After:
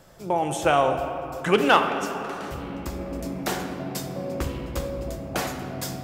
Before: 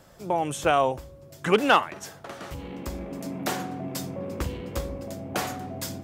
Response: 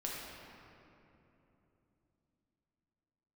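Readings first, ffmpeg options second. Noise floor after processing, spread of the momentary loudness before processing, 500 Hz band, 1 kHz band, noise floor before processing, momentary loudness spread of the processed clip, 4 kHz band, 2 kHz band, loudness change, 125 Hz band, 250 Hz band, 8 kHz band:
-36 dBFS, 16 LU, +2.5 dB, +2.0 dB, -50 dBFS, 13 LU, +1.5 dB, +2.0 dB, +1.5 dB, +2.5 dB, +2.5 dB, +1.5 dB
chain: -filter_complex "[0:a]asplit=2[a][b];[1:a]atrim=start_sample=2205[c];[b][c]afir=irnorm=-1:irlink=0,volume=-2.5dB[d];[a][d]amix=inputs=2:normalize=0,volume=-2.5dB"

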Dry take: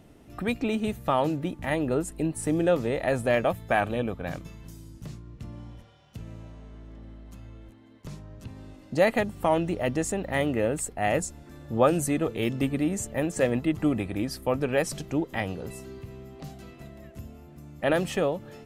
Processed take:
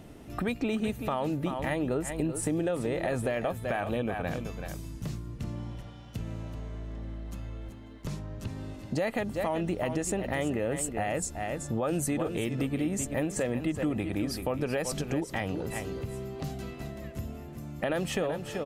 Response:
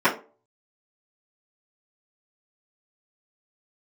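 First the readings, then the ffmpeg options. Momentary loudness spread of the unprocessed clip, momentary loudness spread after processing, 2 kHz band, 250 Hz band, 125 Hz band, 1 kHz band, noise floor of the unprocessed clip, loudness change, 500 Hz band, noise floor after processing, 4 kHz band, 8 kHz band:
21 LU, 11 LU, -4.5 dB, -3.0 dB, -1.0 dB, -5.5 dB, -51 dBFS, -5.5 dB, -5.0 dB, -45 dBFS, -2.5 dB, -0.5 dB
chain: -af "aecho=1:1:381:0.266,alimiter=limit=-17.5dB:level=0:latency=1:release=72,acompressor=threshold=-35dB:ratio=2.5,volume=5dB"

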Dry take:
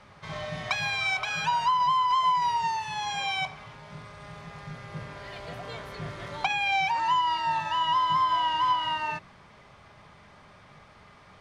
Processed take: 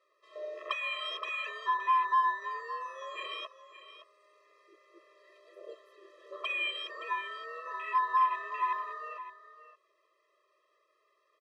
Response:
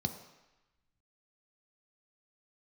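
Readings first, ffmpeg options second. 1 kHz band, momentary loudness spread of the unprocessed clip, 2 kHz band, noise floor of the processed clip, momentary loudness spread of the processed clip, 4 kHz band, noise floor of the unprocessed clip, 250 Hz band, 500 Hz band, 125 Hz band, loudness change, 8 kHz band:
-7.0 dB, 19 LU, -6.0 dB, -74 dBFS, 21 LU, -9.0 dB, -54 dBFS, under -15 dB, -3.0 dB, under -40 dB, -6.5 dB, under -15 dB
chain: -af "afwtdn=0.0316,aecho=1:1:568:0.224,afftfilt=real='re*eq(mod(floor(b*sr/1024/340),2),1)':imag='im*eq(mod(floor(b*sr/1024/340),2),1)':win_size=1024:overlap=0.75"

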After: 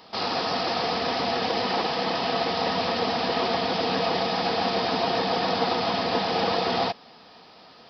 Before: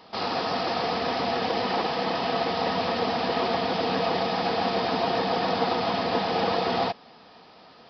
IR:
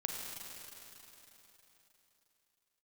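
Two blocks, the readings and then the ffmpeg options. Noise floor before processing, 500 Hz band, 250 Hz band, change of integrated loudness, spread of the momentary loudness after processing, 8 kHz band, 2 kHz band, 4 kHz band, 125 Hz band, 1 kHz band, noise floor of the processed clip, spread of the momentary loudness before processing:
-51 dBFS, 0.0 dB, 0.0 dB, +1.0 dB, 1 LU, n/a, +1.5 dB, +3.5 dB, 0.0 dB, +0.5 dB, -50 dBFS, 2 LU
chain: -af "highshelf=f=4.3k:g=7.5"

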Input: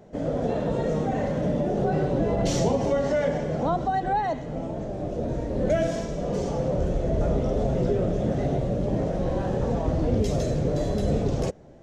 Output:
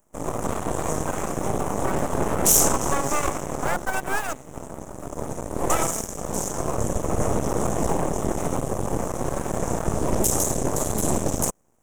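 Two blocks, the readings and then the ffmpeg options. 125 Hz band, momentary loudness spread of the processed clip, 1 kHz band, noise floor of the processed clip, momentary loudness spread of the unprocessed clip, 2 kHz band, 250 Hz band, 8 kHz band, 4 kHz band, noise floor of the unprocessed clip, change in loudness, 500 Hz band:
-3.5 dB, 9 LU, +2.5 dB, -41 dBFS, 5 LU, +6.5 dB, -1.5 dB, +19.0 dB, +4.5 dB, -33 dBFS, +1.0 dB, -2.5 dB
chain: -af "aeval=exprs='0.266*(cos(1*acos(clip(val(0)/0.266,-1,1)))-cos(1*PI/2))+0.0168*(cos(3*acos(clip(val(0)/0.266,-1,1)))-cos(3*PI/2))+0.0266*(cos(7*acos(clip(val(0)/0.266,-1,1)))-cos(7*PI/2))+0.0168*(cos(8*acos(clip(val(0)/0.266,-1,1)))-cos(8*PI/2))':c=same,aeval=exprs='abs(val(0))':c=same,aexciter=amount=8.7:drive=9.6:freq=6.7k,volume=2.5dB"

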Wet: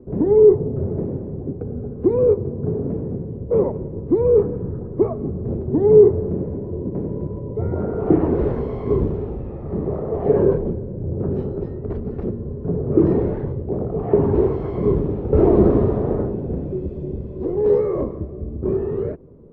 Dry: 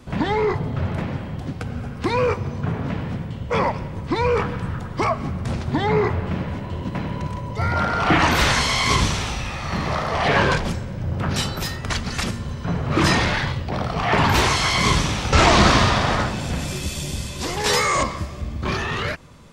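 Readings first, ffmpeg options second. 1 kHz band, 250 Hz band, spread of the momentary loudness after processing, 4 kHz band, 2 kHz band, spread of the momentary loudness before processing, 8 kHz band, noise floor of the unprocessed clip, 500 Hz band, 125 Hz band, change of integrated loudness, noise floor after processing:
-13.5 dB, +3.5 dB, 14 LU, under -35 dB, under -25 dB, 12 LU, under -40 dB, -32 dBFS, +8.0 dB, -0.5 dB, +1.0 dB, -32 dBFS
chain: -af "lowpass=f=410:t=q:w=4.9,volume=-1.5dB"

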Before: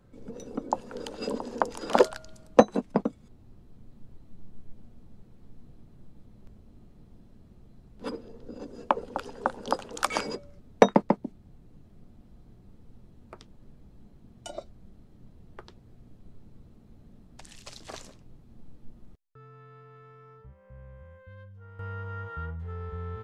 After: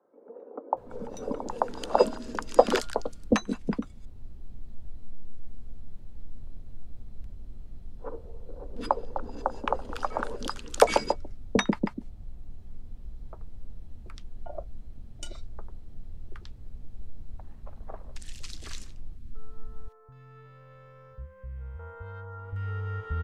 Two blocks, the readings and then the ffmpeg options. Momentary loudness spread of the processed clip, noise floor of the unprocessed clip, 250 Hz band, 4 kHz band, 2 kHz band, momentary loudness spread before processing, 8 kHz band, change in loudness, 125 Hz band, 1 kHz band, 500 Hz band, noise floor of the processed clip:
24 LU, -56 dBFS, -1.0 dB, +2.5 dB, +1.0 dB, 23 LU, +2.5 dB, -1.0 dB, +2.0 dB, 0.0 dB, -0.5 dB, -51 dBFS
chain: -filter_complex "[0:a]asubboost=boost=5.5:cutoff=65,acrossover=split=160[a][b];[a]asoftclip=type=tanh:threshold=-26.5dB[c];[c][b]amix=inputs=2:normalize=0,acrossover=split=380|1200[d][e][f];[d]adelay=730[g];[f]adelay=770[h];[g][e][h]amix=inputs=3:normalize=0,volume=2.5dB"

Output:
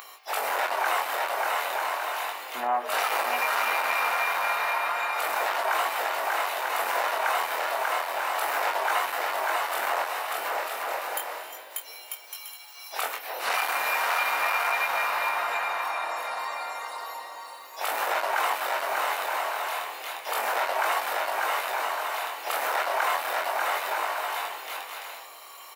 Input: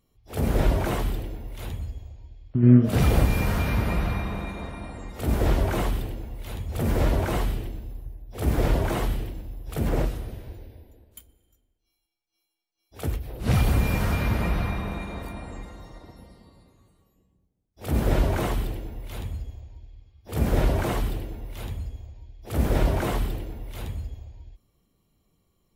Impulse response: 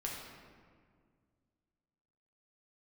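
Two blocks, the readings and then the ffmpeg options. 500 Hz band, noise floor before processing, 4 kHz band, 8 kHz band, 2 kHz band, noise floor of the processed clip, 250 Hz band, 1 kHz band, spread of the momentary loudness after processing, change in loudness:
0.0 dB, -76 dBFS, +7.5 dB, +6.0 dB, +11.0 dB, -45 dBFS, -24.5 dB, +11.0 dB, 11 LU, -1.0 dB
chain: -filter_complex "[0:a]asplit=2[a][b];[b]acompressor=mode=upward:threshold=-28dB:ratio=2.5,volume=-3dB[c];[a][c]amix=inputs=2:normalize=0,asoftclip=type=tanh:threshold=-2dB,asplit=2[d][e];[e]aecho=0:1:590|944|1156|1284|1360:0.631|0.398|0.251|0.158|0.1[f];[d][f]amix=inputs=2:normalize=0,flanger=delay=19.5:depth=5.7:speed=0.33,equalizer=f=7.8k:w=0.32:g=-8.5,aeval=exprs='0.596*sin(PI/2*2.24*val(0)/0.596)':c=same,highpass=f=820:w=0.5412,highpass=f=820:w=1.3066,bandreject=f=3.3k:w=16,acompressor=threshold=-39dB:ratio=2,volume=8.5dB"

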